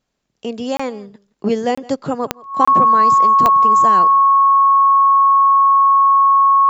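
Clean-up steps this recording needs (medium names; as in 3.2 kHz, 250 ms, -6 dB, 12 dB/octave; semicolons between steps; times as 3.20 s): de-click; band-stop 1.1 kHz, Q 30; interpolate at 0.77/1.75/2.65 s, 25 ms; inverse comb 167 ms -22.5 dB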